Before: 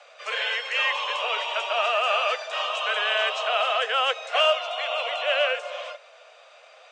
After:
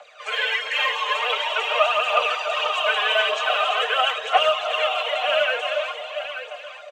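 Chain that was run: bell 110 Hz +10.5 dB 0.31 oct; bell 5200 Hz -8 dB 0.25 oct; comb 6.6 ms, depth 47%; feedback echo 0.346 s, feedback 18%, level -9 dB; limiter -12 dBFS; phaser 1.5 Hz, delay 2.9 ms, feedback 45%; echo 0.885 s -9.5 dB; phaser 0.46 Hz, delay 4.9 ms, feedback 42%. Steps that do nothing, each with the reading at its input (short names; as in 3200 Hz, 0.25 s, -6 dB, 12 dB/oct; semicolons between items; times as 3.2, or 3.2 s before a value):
bell 110 Hz: input band starts at 400 Hz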